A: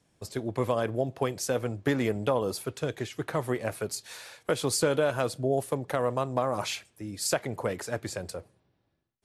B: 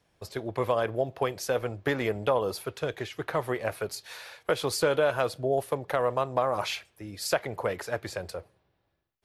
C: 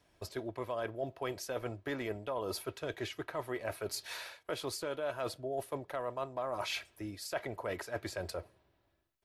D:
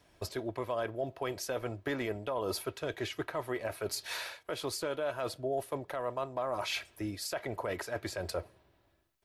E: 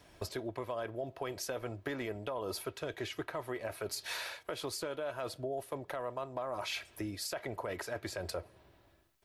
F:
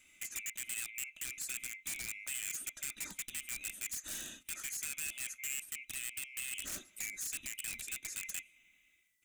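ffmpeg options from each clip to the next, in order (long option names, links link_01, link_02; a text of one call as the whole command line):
ffmpeg -i in.wav -af "equalizer=frequency=125:width_type=o:width=1:gain=-5,equalizer=frequency=250:width_type=o:width=1:gain=-8,equalizer=frequency=8000:width_type=o:width=1:gain=-10,volume=3dB" out.wav
ffmpeg -i in.wav -af "aecho=1:1:3.1:0.34,areverse,acompressor=threshold=-35dB:ratio=5,areverse" out.wav
ffmpeg -i in.wav -af "alimiter=level_in=5dB:limit=-24dB:level=0:latency=1:release=211,volume=-5dB,volume=5dB" out.wav
ffmpeg -i in.wav -af "acompressor=threshold=-44dB:ratio=2.5,volume=5dB" out.wav
ffmpeg -i in.wav -af "afftfilt=real='real(if(lt(b,920),b+92*(1-2*mod(floor(b/92),2)),b),0)':imag='imag(if(lt(b,920),b+92*(1-2*mod(floor(b/92),2)),b),0)':win_size=2048:overlap=0.75,aeval=exprs='(mod(39.8*val(0)+1,2)-1)/39.8':channel_layout=same,equalizer=frequency=125:width_type=o:width=1:gain=-4,equalizer=frequency=500:width_type=o:width=1:gain=-11,equalizer=frequency=1000:width_type=o:width=1:gain=-12,equalizer=frequency=4000:width_type=o:width=1:gain=-7,equalizer=frequency=8000:width_type=o:width=1:gain=5,volume=-1dB" out.wav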